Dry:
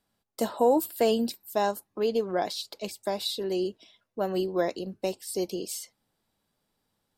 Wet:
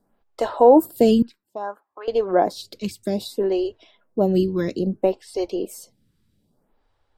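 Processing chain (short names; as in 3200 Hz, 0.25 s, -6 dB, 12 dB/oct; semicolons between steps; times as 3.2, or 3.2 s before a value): tilt -2.5 dB/oct; 1.22–2.08 auto-wah 690–1400 Hz, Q 2.5, up, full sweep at -24 dBFS; photocell phaser 0.61 Hz; gain +9 dB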